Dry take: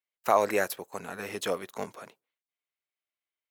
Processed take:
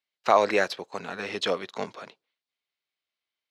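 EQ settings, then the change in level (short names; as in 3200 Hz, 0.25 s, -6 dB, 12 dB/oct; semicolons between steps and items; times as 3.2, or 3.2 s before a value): HPF 110 Hz; synth low-pass 4300 Hz, resonance Q 2.1; +3.0 dB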